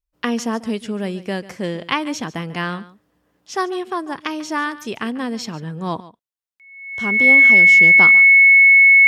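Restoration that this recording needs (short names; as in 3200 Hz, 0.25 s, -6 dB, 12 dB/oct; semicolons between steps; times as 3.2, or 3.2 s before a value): notch 2200 Hz, Q 30; inverse comb 0.143 s -17.5 dB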